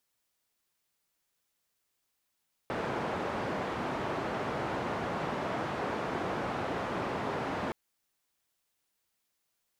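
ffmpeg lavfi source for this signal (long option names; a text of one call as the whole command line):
ffmpeg -f lavfi -i "anoisesrc=color=white:duration=5.02:sample_rate=44100:seed=1,highpass=frequency=100,lowpass=frequency=960,volume=-15.6dB" out.wav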